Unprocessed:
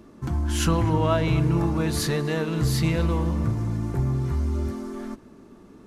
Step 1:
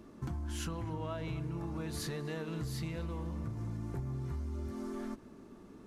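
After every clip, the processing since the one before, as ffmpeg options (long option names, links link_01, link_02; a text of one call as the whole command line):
ffmpeg -i in.wav -af "acompressor=threshold=-30dB:ratio=10,volume=-5dB" out.wav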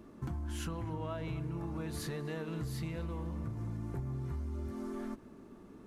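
ffmpeg -i in.wav -af "equalizer=frequency=5400:width_type=o:width=1.4:gain=-4" out.wav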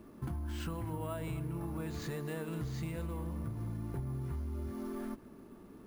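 ffmpeg -i in.wav -filter_complex "[0:a]acrossover=split=5500[link_01][link_02];[link_02]acompressor=threshold=-58dB:ratio=4:attack=1:release=60[link_03];[link_01][link_03]amix=inputs=2:normalize=0,acrusher=samples=4:mix=1:aa=0.000001" out.wav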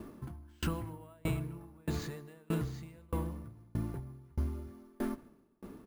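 ffmpeg -i in.wav -filter_complex "[0:a]asplit=2[link_01][link_02];[link_02]adelay=157.4,volume=-17dB,highshelf=frequency=4000:gain=-3.54[link_03];[link_01][link_03]amix=inputs=2:normalize=0,aeval=exprs='val(0)*pow(10,-33*if(lt(mod(1.6*n/s,1),2*abs(1.6)/1000),1-mod(1.6*n/s,1)/(2*abs(1.6)/1000),(mod(1.6*n/s,1)-2*abs(1.6)/1000)/(1-2*abs(1.6)/1000))/20)':channel_layout=same,volume=9dB" out.wav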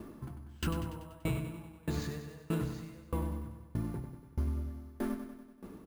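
ffmpeg -i in.wav -af "aecho=1:1:96|192|288|384|480|576|672:0.355|0.209|0.124|0.0729|0.043|0.0254|0.015" out.wav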